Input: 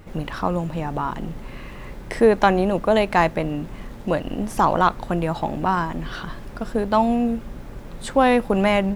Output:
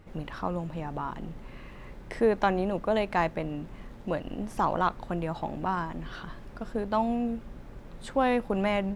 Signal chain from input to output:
high-shelf EQ 7,100 Hz −7.5 dB
level −8.5 dB

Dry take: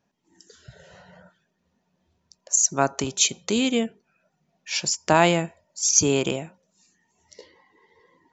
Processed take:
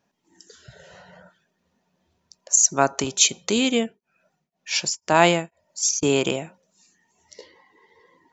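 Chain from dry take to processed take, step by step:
low-shelf EQ 210 Hz −5.5 dB
0:03.76–0:06.03: tremolo along a rectified sine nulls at 2 Hz
level +3 dB

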